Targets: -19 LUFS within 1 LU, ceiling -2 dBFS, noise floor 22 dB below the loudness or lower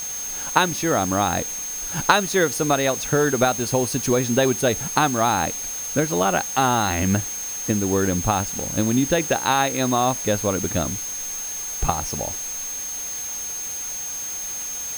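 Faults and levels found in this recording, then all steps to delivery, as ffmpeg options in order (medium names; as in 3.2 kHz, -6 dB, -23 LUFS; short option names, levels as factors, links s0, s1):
steady tone 6.4 kHz; tone level -28 dBFS; noise floor -30 dBFS; noise floor target -44 dBFS; loudness -22.0 LUFS; peak level -2.0 dBFS; loudness target -19.0 LUFS
-> -af "bandreject=f=6400:w=30"
-af "afftdn=nr=14:nf=-30"
-af "volume=1.41,alimiter=limit=0.794:level=0:latency=1"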